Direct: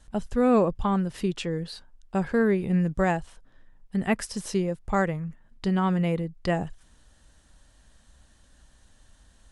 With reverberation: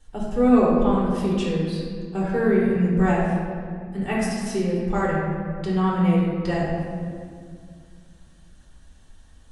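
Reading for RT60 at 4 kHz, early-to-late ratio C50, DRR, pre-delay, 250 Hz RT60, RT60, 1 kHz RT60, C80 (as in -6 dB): 1.2 s, -1.0 dB, -6.5 dB, 3 ms, 2.9 s, 2.1 s, 1.9 s, 1.5 dB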